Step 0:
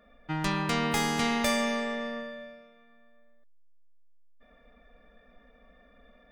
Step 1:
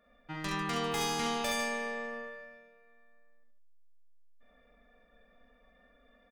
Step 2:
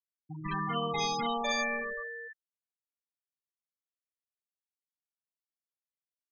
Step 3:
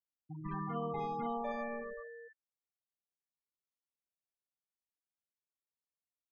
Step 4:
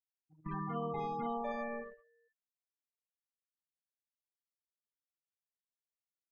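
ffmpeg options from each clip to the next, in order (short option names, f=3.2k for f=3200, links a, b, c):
-filter_complex "[0:a]lowshelf=f=420:g=-3.5,asplit=2[a][b];[b]aecho=0:1:43|67|71|148:0.562|0.422|0.501|0.355[c];[a][c]amix=inputs=2:normalize=0,volume=-7dB"
-af "afftfilt=real='re*gte(hypot(re,im),0.0501)':imag='im*gte(hypot(re,im),0.0501)':win_size=1024:overlap=0.75,equalizer=f=320:w=1.3:g=-7,volume=4.5dB"
-af "lowpass=1k,volume=-3.5dB"
-af "bandreject=f=273.5:t=h:w=4,bandreject=f=547:t=h:w=4,bandreject=f=820.5:t=h:w=4,bandreject=f=1.094k:t=h:w=4,bandreject=f=1.3675k:t=h:w=4,bandreject=f=1.641k:t=h:w=4,bandreject=f=1.9145k:t=h:w=4,bandreject=f=2.188k:t=h:w=4,bandreject=f=2.4615k:t=h:w=4,bandreject=f=2.735k:t=h:w=4,bandreject=f=3.0085k:t=h:w=4,bandreject=f=3.282k:t=h:w=4,bandreject=f=3.5555k:t=h:w=4,bandreject=f=3.829k:t=h:w=4,bandreject=f=4.1025k:t=h:w=4,bandreject=f=4.376k:t=h:w=4,bandreject=f=4.6495k:t=h:w=4,bandreject=f=4.923k:t=h:w=4,bandreject=f=5.1965k:t=h:w=4,bandreject=f=5.47k:t=h:w=4,bandreject=f=5.7435k:t=h:w=4,bandreject=f=6.017k:t=h:w=4,bandreject=f=6.2905k:t=h:w=4,bandreject=f=6.564k:t=h:w=4,bandreject=f=6.8375k:t=h:w=4,bandreject=f=7.111k:t=h:w=4,bandreject=f=7.3845k:t=h:w=4,bandreject=f=7.658k:t=h:w=4,bandreject=f=7.9315k:t=h:w=4,bandreject=f=8.205k:t=h:w=4,agate=range=-22dB:threshold=-42dB:ratio=16:detection=peak"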